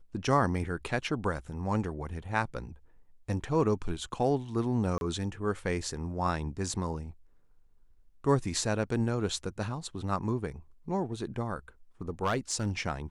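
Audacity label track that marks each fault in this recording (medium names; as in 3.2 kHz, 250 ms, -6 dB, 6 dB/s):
4.980000	5.010000	dropout 31 ms
12.230000	12.670000	clipped -22.5 dBFS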